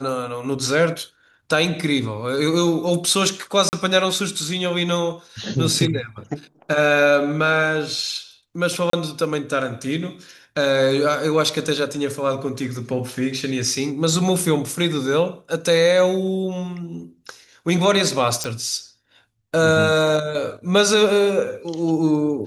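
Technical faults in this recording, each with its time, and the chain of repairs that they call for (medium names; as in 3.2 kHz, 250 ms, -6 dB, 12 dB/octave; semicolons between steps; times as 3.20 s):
3.69–3.73 s: dropout 39 ms
8.90–8.93 s: dropout 33 ms
18.44 s: pop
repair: de-click; interpolate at 3.69 s, 39 ms; interpolate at 8.90 s, 33 ms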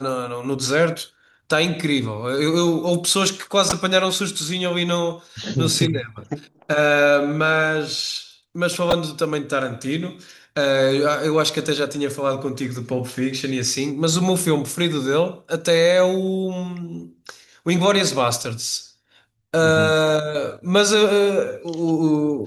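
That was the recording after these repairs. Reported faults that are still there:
nothing left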